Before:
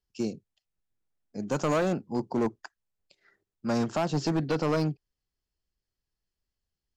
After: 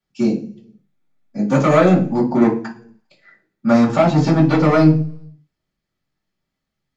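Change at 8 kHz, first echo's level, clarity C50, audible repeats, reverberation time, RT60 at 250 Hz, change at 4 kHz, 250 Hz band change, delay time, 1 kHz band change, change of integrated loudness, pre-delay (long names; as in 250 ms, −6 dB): can't be measured, no echo audible, 10.5 dB, no echo audible, 0.45 s, 0.75 s, +7.0 dB, +15.0 dB, no echo audible, +12.5 dB, +13.5 dB, 3 ms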